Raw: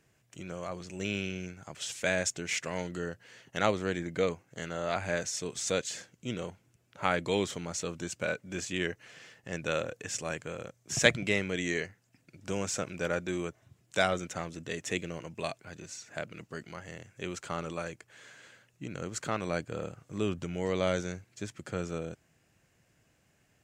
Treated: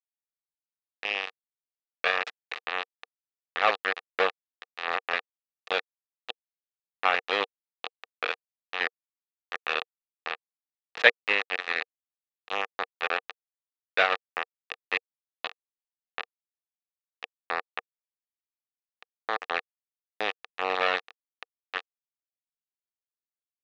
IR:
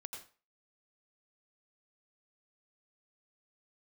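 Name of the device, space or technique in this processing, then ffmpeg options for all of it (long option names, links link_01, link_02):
hand-held game console: -af "acrusher=bits=3:mix=0:aa=0.000001,highpass=420,equalizer=frequency=470:width_type=q:width=4:gain=9,equalizer=frequency=760:width_type=q:width=4:gain=9,equalizer=frequency=1200:width_type=q:width=4:gain=10,equalizer=frequency=1800:width_type=q:width=4:gain=10,equalizer=frequency=2600:width_type=q:width=4:gain=10,equalizer=frequency=3800:width_type=q:width=4:gain=5,lowpass=frequency=4100:width=0.5412,lowpass=frequency=4100:width=1.3066,volume=-3dB"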